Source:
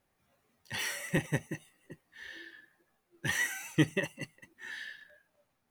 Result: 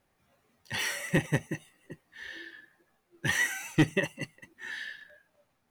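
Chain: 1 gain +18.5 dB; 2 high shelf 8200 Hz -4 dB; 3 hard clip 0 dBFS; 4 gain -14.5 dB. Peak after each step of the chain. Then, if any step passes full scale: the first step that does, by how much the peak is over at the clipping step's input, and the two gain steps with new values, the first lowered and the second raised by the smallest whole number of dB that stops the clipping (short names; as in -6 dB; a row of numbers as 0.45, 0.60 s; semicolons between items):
+6.0, +6.0, 0.0, -14.5 dBFS; step 1, 6.0 dB; step 1 +12.5 dB, step 4 -8.5 dB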